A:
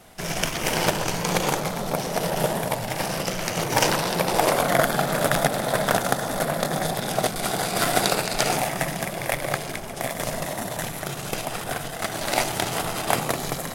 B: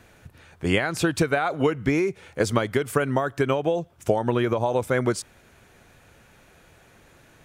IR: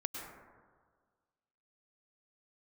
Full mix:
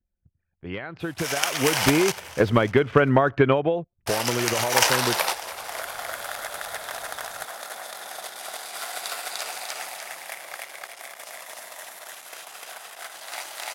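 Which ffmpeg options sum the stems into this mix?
-filter_complex "[0:a]highpass=920,adelay=1000,volume=-5.5dB,asplit=3[a][b][c];[a]atrim=end=2.12,asetpts=PTS-STARTPTS,afade=t=out:st=2.116:d=0.004:c=hsin[d];[b]atrim=start=2.12:end=4.06,asetpts=PTS-STARTPTS,volume=0[e];[c]atrim=start=4.06,asetpts=PTS-STARTPTS,afade=t=in:d=0.004:c=hsin[f];[d][e][f]concat=n=3:v=0:a=1,asplit=2[g][h];[h]volume=-17dB[i];[1:a]asoftclip=type=hard:threshold=-12dB,lowpass=f=3.4k:w=0.5412,lowpass=f=3.4k:w=1.3066,volume=-6dB,afade=t=in:st=1.45:d=0.46:silence=0.375837,afade=t=out:st=3.4:d=0.46:silence=0.446684,asplit=2[j][k];[k]apad=whole_len=650278[l];[g][l]sidechaingate=range=-17dB:threshold=-59dB:ratio=16:detection=peak[m];[i]aecho=0:1:298|596|894|1192|1490|1788:1|0.42|0.176|0.0741|0.0311|0.0131[n];[m][j][n]amix=inputs=3:normalize=0,anlmdn=0.000251,dynaudnorm=f=100:g=17:m=12dB"

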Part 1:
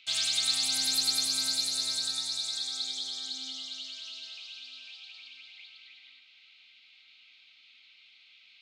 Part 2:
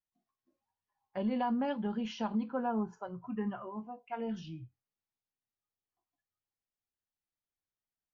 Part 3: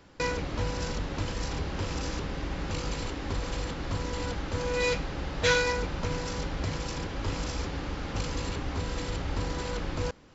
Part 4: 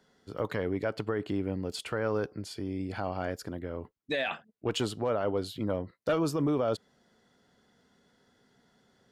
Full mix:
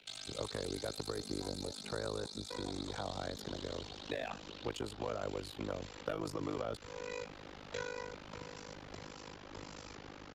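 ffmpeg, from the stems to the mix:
-filter_complex "[0:a]volume=-3dB[a];[1:a]volume=-12.5dB[b];[2:a]highpass=f=220:p=1,adelay=2300,volume=-9dB[c];[3:a]volume=2.5dB[d];[a][b][c][d]amix=inputs=4:normalize=0,tremolo=f=51:d=0.974,acrossover=split=99|380|1300|7900[e][f][g][h][i];[e]acompressor=threshold=-49dB:ratio=4[j];[f]acompressor=threshold=-47dB:ratio=4[k];[g]acompressor=threshold=-40dB:ratio=4[l];[h]acompressor=threshold=-48dB:ratio=4[m];[i]acompressor=threshold=-60dB:ratio=4[n];[j][k][l][m][n]amix=inputs=5:normalize=0"

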